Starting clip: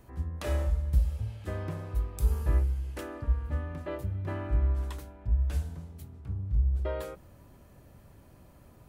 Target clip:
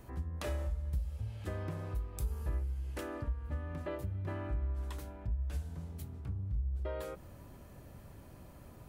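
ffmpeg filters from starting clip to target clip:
-af "acompressor=threshold=0.01:ratio=2.5,volume=1.26"

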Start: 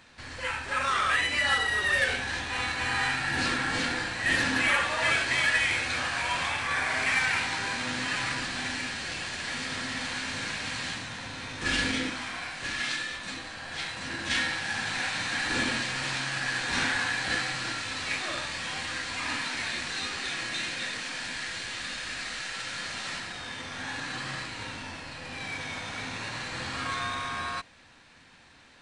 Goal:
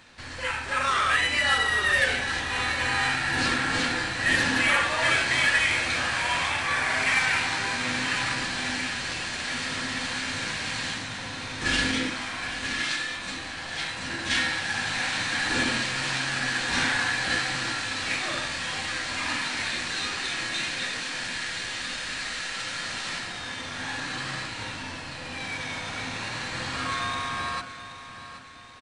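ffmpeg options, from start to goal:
-filter_complex "[0:a]bandreject=f=70.16:t=h:w=4,bandreject=f=140.32:t=h:w=4,bandreject=f=210.48:t=h:w=4,bandreject=f=280.64:t=h:w=4,bandreject=f=350.8:t=h:w=4,bandreject=f=420.96:t=h:w=4,bandreject=f=491.12:t=h:w=4,bandreject=f=561.28:t=h:w=4,bandreject=f=631.44:t=h:w=4,bandreject=f=701.6:t=h:w=4,bandreject=f=771.76:t=h:w=4,bandreject=f=841.92:t=h:w=4,bandreject=f=912.08:t=h:w=4,bandreject=f=982.24:t=h:w=4,bandreject=f=1052.4:t=h:w=4,bandreject=f=1122.56:t=h:w=4,bandreject=f=1192.72:t=h:w=4,bandreject=f=1262.88:t=h:w=4,bandreject=f=1333.04:t=h:w=4,bandreject=f=1403.2:t=h:w=4,bandreject=f=1473.36:t=h:w=4,bandreject=f=1543.52:t=h:w=4,bandreject=f=1613.68:t=h:w=4,bandreject=f=1683.84:t=h:w=4,bandreject=f=1754:t=h:w=4,bandreject=f=1824.16:t=h:w=4,bandreject=f=1894.32:t=h:w=4,bandreject=f=1964.48:t=h:w=4,bandreject=f=2034.64:t=h:w=4,bandreject=f=2104.8:t=h:w=4,bandreject=f=2174.96:t=h:w=4,bandreject=f=2245.12:t=h:w=4,bandreject=f=2315.28:t=h:w=4,bandreject=f=2385.44:t=h:w=4,bandreject=f=2455.6:t=h:w=4,bandreject=f=2525.76:t=h:w=4,bandreject=f=2595.92:t=h:w=4,bandreject=f=2666.08:t=h:w=4,asplit=2[s0][s1];[s1]aecho=0:1:777|1554|2331|3108:0.237|0.104|0.0459|0.0202[s2];[s0][s2]amix=inputs=2:normalize=0,volume=1.41"

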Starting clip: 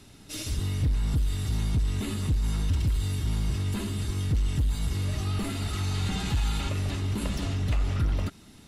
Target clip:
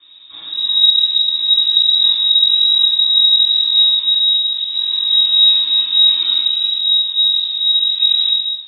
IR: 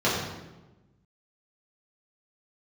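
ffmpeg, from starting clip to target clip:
-filter_complex "[0:a]equalizer=f=2300:w=0.37:g=-7.5,asettb=1/sr,asplit=3[s0][s1][s2];[s0]atrim=end=4.194[s3];[s1]atrim=start=4.19:end=4.68,asetpts=PTS-STARTPTS,afade=t=in:d=0.004:c=qsin,afade=t=out:st=0.486:d=0.004:c=qsin,asoftclip=type=hard:threshold=0.02[s4];[s2]atrim=start=4.676[s5];[s3][s4]acrossfade=d=0.004:c1=hsin:c2=qsin[s6];[s6][s5]acrossfade=d=0.004:c1=qsin:c2=hsin,asettb=1/sr,asplit=3[s7][s8][s9];[s7]atrim=end=6.404[s10];[s8]atrim=start=6.4:end=8,asetpts=PTS-STARTPTS,afade=t=in:d=0.004:c=qsin,afade=t=out:st=1.596:d=0.004:c=qsin,acrossover=split=290|1700[s11][s12][s13];[s11]acompressor=threshold=0.0398:ratio=4[s14];[s12]acompressor=threshold=0.00447:ratio=4[s15];[s13]acompressor=threshold=0.00126:ratio=4[s16];[s14][s15][s16]amix=inputs=3:normalize=0[s17];[s9]atrim=start=7.996[s18];[s10][s17]acrossfade=d=0.004:c1=hsin:c2=qsin[s19];[s19][s18]acrossfade=d=0.004:c1=qsin:c2=hsin[s20];[1:a]atrim=start_sample=2205,afade=t=out:st=0.43:d=0.01,atrim=end_sample=19404[s21];[s20][s21]afir=irnorm=-1:irlink=0,lowpass=f=3300:t=q:w=0.5098,lowpass=f=3300:t=q:w=0.6013,lowpass=f=3300:t=q:w=0.9,lowpass=f=3300:t=q:w=2.563,afreqshift=-3900,volume=0.447"

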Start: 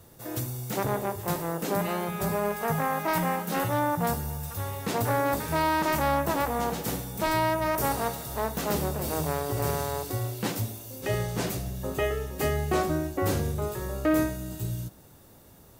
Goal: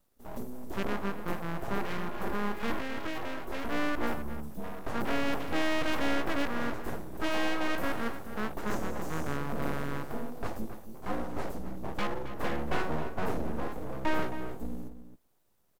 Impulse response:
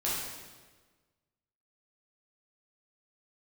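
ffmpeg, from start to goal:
-filter_complex "[0:a]afwtdn=0.02,asettb=1/sr,asplit=3[s0][s1][s2];[s0]atrim=end=2.764[s3];[s1]atrim=start=2.76:end=3.65,asetpts=PTS-STARTPTS,afade=t=in:d=0.004:c=qsin,afade=t=out:st=0.886:d=0.004:c=qsin,acompressor=threshold=0.0398:ratio=6[s4];[s2]atrim=start=3.646[s5];[s3][s4]acrossfade=d=0.004:c1=hsin:c2=qsin[s6];[s6][s5]acrossfade=d=0.004:c1=qsin:c2=hsin,asettb=1/sr,asplit=3[s7][s8][s9];[s7]atrim=end=8.674[s10];[s8]atrim=start=8.67:end=9.37,asetpts=PTS-STARTPTS,afade=t=in:d=0.004:c=qsin,afade=t=out:st=0.696:d=0.004:c=qsin,equalizer=f=6500:w=2.3:g=13[s11];[s9]atrim=start=9.366[s12];[s10][s11]acrossfade=d=0.004:c1=hsin:c2=qsin[s13];[s13][s12]acrossfade=d=0.004:c1=qsin:c2=hsin,aeval=exprs='abs(val(0))':c=same,asplit=2[s14][s15];[s15]adelay=268.2,volume=0.282,highshelf=f=4000:g=-6.04[s16];[s14][s16]amix=inputs=2:normalize=0,volume=0.794"

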